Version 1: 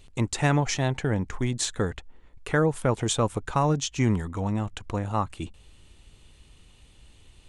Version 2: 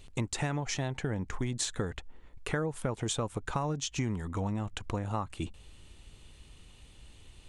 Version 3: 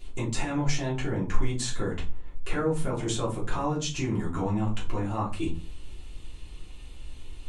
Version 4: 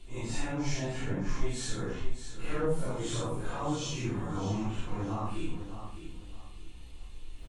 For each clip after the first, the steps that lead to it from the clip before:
downward compressor 6 to 1, threshold −29 dBFS, peak gain reduction 11.5 dB
brickwall limiter −24.5 dBFS, peak gain reduction 7 dB; rectangular room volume 140 cubic metres, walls furnished, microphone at 3.1 metres; level −2 dB
random phases in long frames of 200 ms; on a send: repeating echo 612 ms, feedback 28%, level −10 dB; on the sum: level −5 dB

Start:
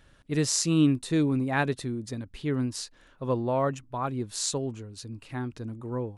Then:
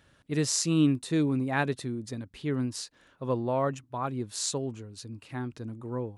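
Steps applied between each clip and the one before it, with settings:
high-pass filter 72 Hz
level −1.5 dB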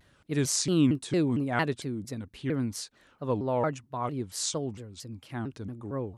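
pitch modulation by a square or saw wave saw down 4.4 Hz, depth 250 cents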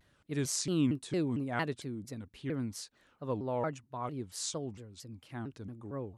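tape wow and flutter 28 cents
level −6 dB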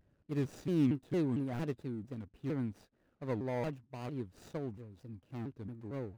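running median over 41 samples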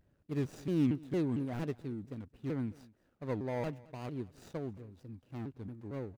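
single-tap delay 218 ms −22.5 dB

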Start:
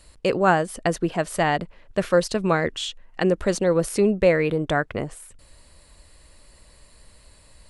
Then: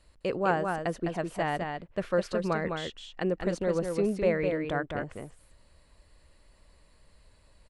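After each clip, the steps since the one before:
high-shelf EQ 5,600 Hz −11.5 dB
single-tap delay 207 ms −5 dB
level −8.5 dB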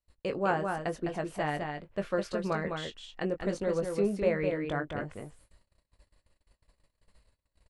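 double-tracking delay 20 ms −8 dB
noise gate −55 dBFS, range −27 dB
level −2.5 dB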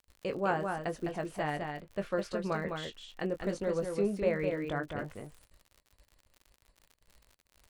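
surface crackle 70 per second −43 dBFS
level −2 dB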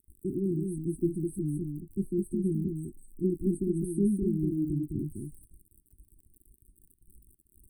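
linear-phase brick-wall band-stop 390–8,000 Hz
level +8.5 dB

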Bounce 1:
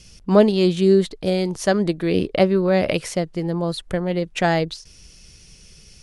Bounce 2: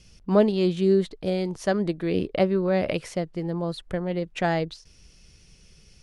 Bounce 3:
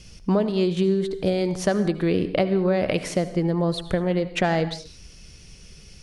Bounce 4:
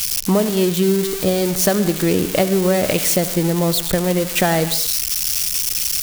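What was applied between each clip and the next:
high-shelf EQ 4,600 Hz −7.5 dB; level −5 dB
downward compressor 12 to 1, threshold −25 dBFS, peak gain reduction 13 dB; convolution reverb, pre-delay 63 ms, DRR 12 dB; level +7.5 dB
spike at every zero crossing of −15.5 dBFS; level +4.5 dB

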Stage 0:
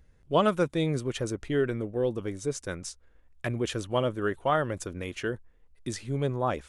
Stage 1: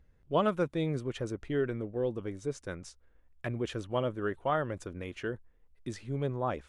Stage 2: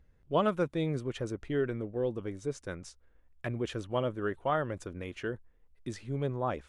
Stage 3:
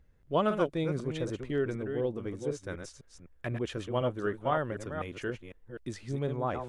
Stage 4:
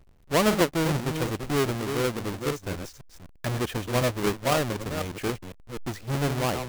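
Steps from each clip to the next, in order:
high-shelf EQ 4,900 Hz −11 dB; level −4 dB
no processing that can be heard
delay that plays each chunk backwards 251 ms, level −7 dB
each half-wave held at its own peak; level +1.5 dB

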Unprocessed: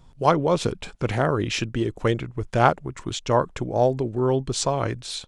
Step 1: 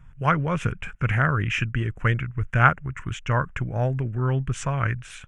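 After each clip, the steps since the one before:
drawn EQ curve 140 Hz 0 dB, 340 Hz −15 dB, 880 Hz −12 dB, 1,500 Hz +4 dB, 2,800 Hz −2 dB, 4,200 Hz −29 dB, 6,200 Hz −13 dB
level +4.5 dB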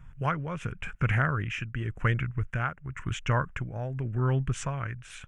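downward compressor 2 to 1, threshold −23 dBFS, peak gain reduction 7.5 dB
amplitude tremolo 0.92 Hz, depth 61%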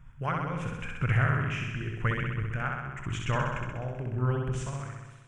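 fade-out on the ending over 1.00 s
floating-point word with a short mantissa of 8 bits
flutter between parallel walls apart 11 metres, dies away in 1.2 s
level −3 dB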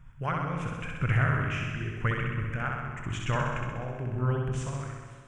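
convolution reverb RT60 1.8 s, pre-delay 82 ms, DRR 9 dB

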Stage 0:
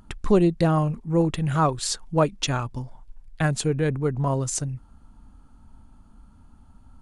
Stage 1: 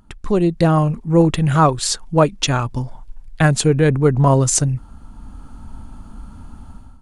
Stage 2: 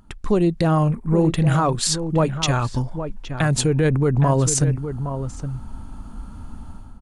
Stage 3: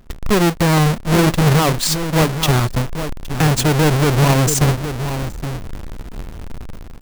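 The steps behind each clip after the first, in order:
automatic gain control gain up to 16 dB; level −1 dB
brickwall limiter −10.5 dBFS, peak gain reduction 8.5 dB; slap from a distant wall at 140 metres, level −9 dB; gain on a spectral selection 0:00.90–0:01.16, 2,500–7,500 Hz −9 dB
each half-wave held at its own peak

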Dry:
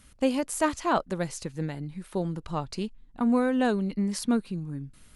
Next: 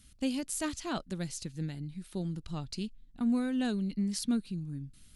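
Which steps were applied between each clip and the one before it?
octave-band graphic EQ 500/1,000/2,000/4,000 Hz −9/−11/−4/+3 dB
level −2.5 dB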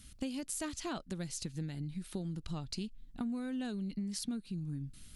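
downward compressor, threshold −40 dBFS, peak gain reduction 13.5 dB
level +4 dB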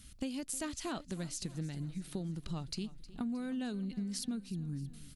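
repeating echo 312 ms, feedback 56%, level −18 dB

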